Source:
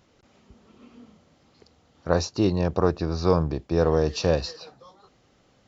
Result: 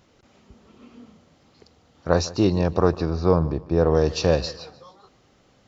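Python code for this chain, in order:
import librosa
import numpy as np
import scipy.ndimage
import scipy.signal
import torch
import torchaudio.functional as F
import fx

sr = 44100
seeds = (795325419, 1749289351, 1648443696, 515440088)

p1 = fx.high_shelf(x, sr, hz=2300.0, db=-11.0, at=(3.1, 3.95))
p2 = p1 + fx.echo_feedback(p1, sr, ms=150, feedback_pct=33, wet_db=-19, dry=0)
y = p2 * librosa.db_to_amplitude(2.5)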